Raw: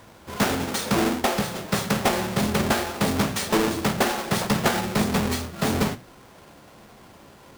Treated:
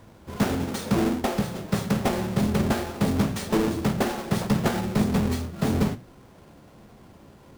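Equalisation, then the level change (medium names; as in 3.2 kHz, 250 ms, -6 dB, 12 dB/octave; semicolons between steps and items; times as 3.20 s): bass shelf 480 Hz +10.5 dB; -7.5 dB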